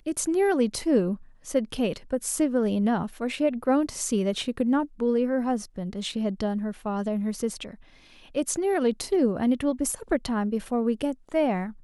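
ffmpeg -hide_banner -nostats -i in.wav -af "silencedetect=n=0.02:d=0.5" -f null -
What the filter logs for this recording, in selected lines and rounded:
silence_start: 7.74
silence_end: 8.35 | silence_duration: 0.61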